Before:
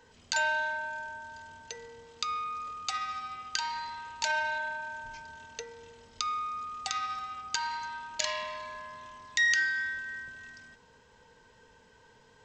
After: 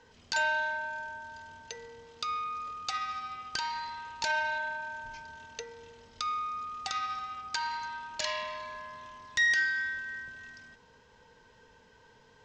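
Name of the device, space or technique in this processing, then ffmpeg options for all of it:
synthesiser wavefolder: -af "aeval=exprs='0.1*(abs(mod(val(0)/0.1+3,4)-2)-1)':channel_layout=same,lowpass=frequency=6800:width=0.5412,lowpass=frequency=6800:width=1.3066"

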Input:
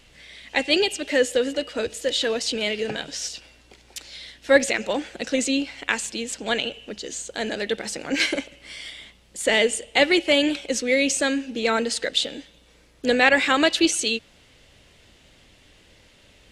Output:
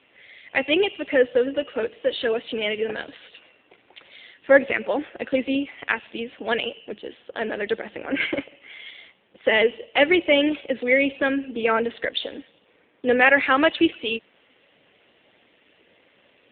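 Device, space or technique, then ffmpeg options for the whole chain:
telephone: -filter_complex "[0:a]asettb=1/sr,asplit=3[link_01][link_02][link_03];[link_01]atrim=end=10.504[link_04];[link_02]atrim=start=10.5:end=10.99,asetpts=PTS-STARTPTS,afade=type=in:duration=0.004:curve=qsin,afade=type=out:start_time=0.486:duration=0.004:curve=qsin,adynamicequalizer=threshold=0.00794:dfrequency=1900:dqfactor=7.9:tfrequency=1900:tqfactor=7.9:attack=5:release=100:ratio=0.375:range=3.5:mode=boostabove:tftype=bell[link_05];[link_03]atrim=start=10.986[link_06];[link_04][link_05]acrossfade=duration=0.004:curve1=hsin:curve2=qsin[link_07];[link_07][link_06]acrossfade=duration=0.004:curve1=qsin:curve2=hsin,highpass=260,lowpass=3100,volume=2.5dB" -ar 8000 -c:a libopencore_amrnb -b:a 7400

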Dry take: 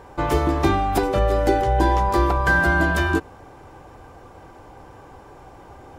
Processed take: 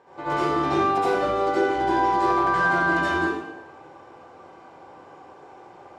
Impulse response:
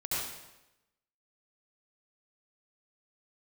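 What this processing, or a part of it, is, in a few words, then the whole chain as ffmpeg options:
supermarket ceiling speaker: -filter_complex "[0:a]highpass=240,lowpass=5600[link_01];[1:a]atrim=start_sample=2205[link_02];[link_01][link_02]afir=irnorm=-1:irlink=0,volume=-6.5dB"

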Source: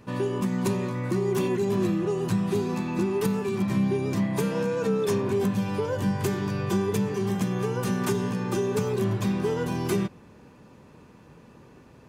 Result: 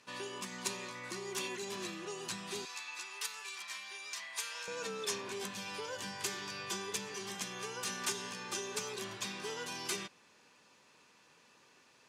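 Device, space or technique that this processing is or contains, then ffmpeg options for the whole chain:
piezo pickup straight into a mixer: -filter_complex "[0:a]lowpass=5800,aderivative,asettb=1/sr,asplit=3[link_01][link_02][link_03];[link_01]atrim=end=2.654[link_04];[link_02]atrim=start=2.65:end=4.68,asetpts=PTS-STARTPTS,afade=type=in:duration=0.004:curve=qsin,afade=type=out:start_time=2.026:duration=0.004:curve=qsin,highpass=1100[link_05];[link_03]atrim=start=4.676[link_06];[link_04][link_05]acrossfade=duration=0.004:curve1=hsin:curve2=qsin[link_07];[link_07][link_06]acrossfade=duration=0.004:curve1=qsin:curve2=hsin,volume=7.5dB"

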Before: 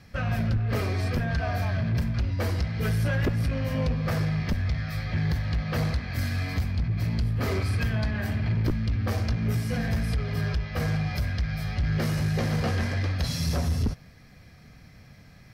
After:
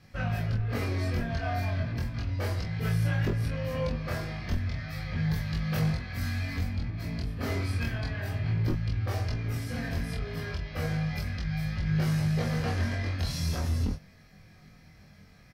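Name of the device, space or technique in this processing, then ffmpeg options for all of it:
double-tracked vocal: -filter_complex "[0:a]asettb=1/sr,asplit=3[link_01][link_02][link_03];[link_01]atrim=end=5.324[link_04];[link_02]atrim=start=5.32:end=5.77,asetpts=PTS-STARTPTS,afade=type=in:duration=0.004:curve=qsin,afade=type=out:start_time=0.446:duration=0.004:curve=qsin,highshelf=frequency=7000:gain=11.5[link_05];[link_03]atrim=start=5.766[link_06];[link_04][link_05]acrossfade=duration=0.004:curve1=hsin:curve2=qsin[link_07];[link_07][link_06]acrossfade=duration=0.004:curve1=qsin:curve2=hsin,asplit=2[link_08][link_09];[link_09]adelay=25,volume=-3dB[link_10];[link_08][link_10]amix=inputs=2:normalize=0,flanger=delay=19.5:depth=2.7:speed=0.34,volume=-2dB"

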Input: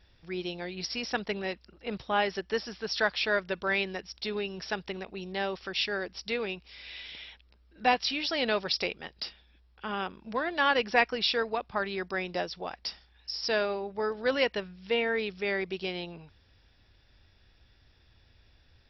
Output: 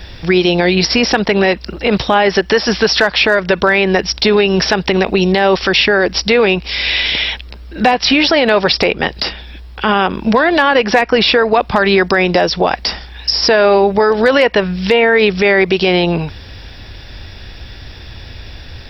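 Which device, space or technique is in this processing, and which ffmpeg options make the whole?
mastering chain: -filter_complex "[0:a]equalizer=frequency=1300:width_type=o:width=0.4:gain=-2.5,acrossover=split=500|2100[link_01][link_02][link_03];[link_01]acompressor=threshold=-38dB:ratio=4[link_04];[link_02]acompressor=threshold=-29dB:ratio=4[link_05];[link_03]acompressor=threshold=-45dB:ratio=4[link_06];[link_04][link_05][link_06]amix=inputs=3:normalize=0,acompressor=threshold=-39dB:ratio=1.5,asoftclip=type=hard:threshold=-25.5dB,alimiter=level_in=31dB:limit=-1dB:release=50:level=0:latency=1,volume=-1dB"

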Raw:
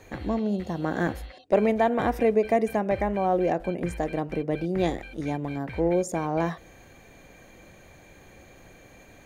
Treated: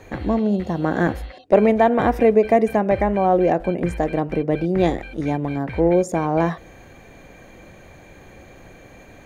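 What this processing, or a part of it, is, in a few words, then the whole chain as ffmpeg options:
behind a face mask: -af "highshelf=frequency=3500:gain=-7,volume=7dB"

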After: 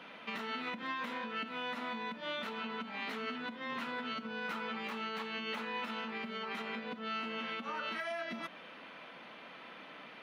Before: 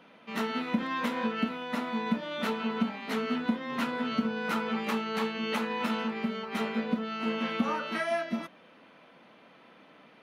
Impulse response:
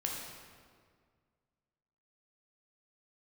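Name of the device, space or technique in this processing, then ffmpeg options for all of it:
broadcast voice chain: -af "highpass=81,deesser=1,acompressor=threshold=-35dB:ratio=5,equalizer=frequency=3500:width_type=o:width=1.5:gain=3,alimiter=level_in=11dB:limit=-24dB:level=0:latency=1:release=177,volume=-11dB,equalizer=frequency=1800:width_type=o:width=2.9:gain=6.5"

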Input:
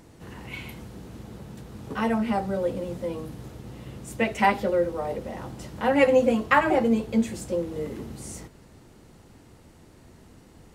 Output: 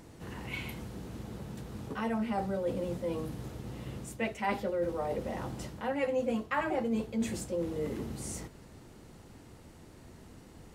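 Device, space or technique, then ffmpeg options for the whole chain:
compression on the reversed sound: -af "areverse,acompressor=threshold=-29dB:ratio=4,areverse,volume=-1dB"

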